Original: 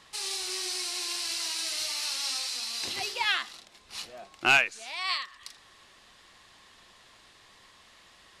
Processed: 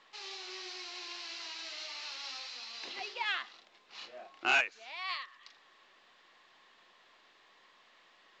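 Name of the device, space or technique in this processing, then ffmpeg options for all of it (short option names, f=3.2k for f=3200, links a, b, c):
telephone: -filter_complex "[0:a]asettb=1/sr,asplit=3[a][b][c];[a]atrim=end=3.984[d];[b]atrim=start=3.98:end=4.61,asetpts=PTS-STARTPTS,afade=t=in:d=0.004:c=qsin,afade=t=out:st=0.626:d=0.004:c=qsin,asplit=2[e][f];[f]adelay=32,volume=-2dB[g];[e][g]amix=inputs=2:normalize=0,atrim=end_sample=27783[h];[c]atrim=start=4.606[i];[d][h]acrossfade=d=0.004:c1=hsin:c2=qsin[j];[j][i]acrossfade=d=0.004:c1=qsin:c2=hsin,highpass=310,lowpass=3.5k,asoftclip=type=tanh:threshold=-13dB,volume=-5.5dB" -ar 16000 -c:a pcm_mulaw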